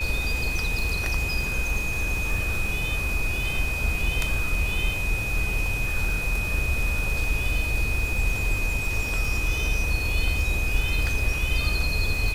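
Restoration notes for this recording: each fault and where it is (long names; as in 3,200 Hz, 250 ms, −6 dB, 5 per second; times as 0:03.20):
surface crackle 140 per second −32 dBFS
whistle 2,500 Hz −28 dBFS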